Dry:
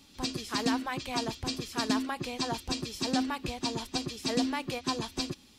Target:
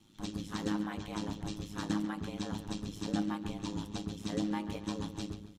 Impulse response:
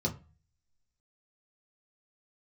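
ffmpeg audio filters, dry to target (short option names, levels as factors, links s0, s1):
-filter_complex "[0:a]asplit=2[s0][s1];[s1]adelay=138,lowpass=f=3600:p=1,volume=0.299,asplit=2[s2][s3];[s3]adelay=138,lowpass=f=3600:p=1,volume=0.43,asplit=2[s4][s5];[s5]adelay=138,lowpass=f=3600:p=1,volume=0.43,asplit=2[s6][s7];[s7]adelay=138,lowpass=f=3600:p=1,volume=0.43,asplit=2[s8][s9];[s9]adelay=138,lowpass=f=3600:p=1,volume=0.43[s10];[s0][s2][s4][s6][s8][s10]amix=inputs=6:normalize=0,asplit=2[s11][s12];[1:a]atrim=start_sample=2205[s13];[s12][s13]afir=irnorm=-1:irlink=0,volume=0.316[s14];[s11][s14]amix=inputs=2:normalize=0,aeval=exprs='val(0)*sin(2*PI*52*n/s)':c=same,volume=0.531"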